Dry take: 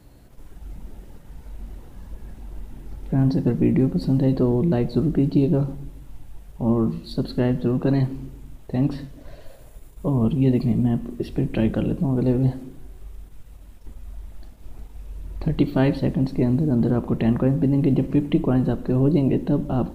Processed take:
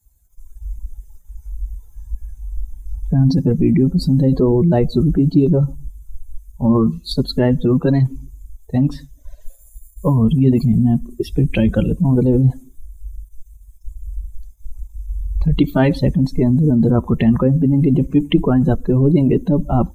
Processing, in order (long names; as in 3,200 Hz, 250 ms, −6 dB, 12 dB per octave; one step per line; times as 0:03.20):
spectral dynamics exaggerated over time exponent 2
in parallel at −1 dB: compressor whose output falls as the input rises −28 dBFS, ratio −0.5
on the sum: level +8 dB